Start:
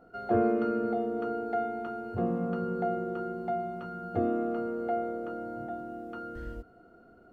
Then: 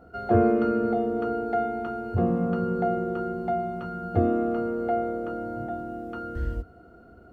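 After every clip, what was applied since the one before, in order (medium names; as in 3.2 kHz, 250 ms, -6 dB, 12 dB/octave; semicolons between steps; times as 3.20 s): peaking EQ 72 Hz +12.5 dB 1.2 oct; trim +4.5 dB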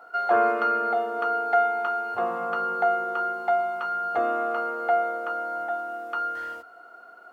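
resonant high-pass 1 kHz, resonance Q 1.7; trim +7 dB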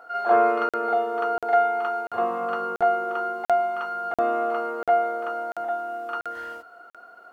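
reverse echo 43 ms -6.5 dB; crackling interface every 0.69 s, samples 2048, zero, from 0.69 s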